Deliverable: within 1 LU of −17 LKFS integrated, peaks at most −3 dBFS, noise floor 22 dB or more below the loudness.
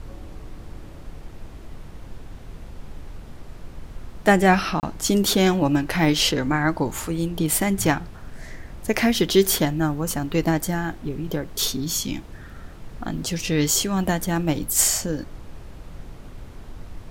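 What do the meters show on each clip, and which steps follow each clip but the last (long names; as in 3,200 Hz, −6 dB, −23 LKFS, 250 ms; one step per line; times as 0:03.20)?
number of dropouts 1; longest dropout 29 ms; background noise floor −41 dBFS; target noise floor −44 dBFS; integrated loudness −22.0 LKFS; sample peak −4.0 dBFS; target loudness −17.0 LKFS
→ repair the gap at 0:04.80, 29 ms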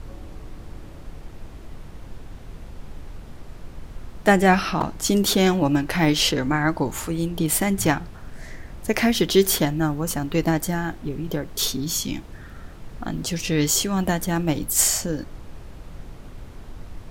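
number of dropouts 0; background noise floor −41 dBFS; target noise floor −44 dBFS
→ noise reduction from a noise print 6 dB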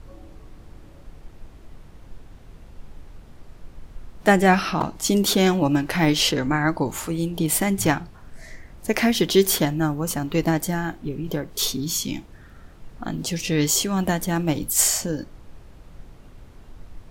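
background noise floor −47 dBFS; integrated loudness −22.0 LKFS; sample peak −4.0 dBFS; target loudness −17.0 LKFS
→ level +5 dB
brickwall limiter −3 dBFS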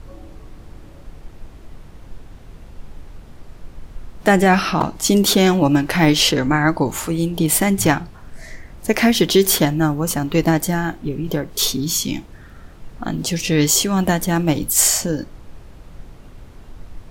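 integrated loudness −17.5 LKFS; sample peak −3.0 dBFS; background noise floor −42 dBFS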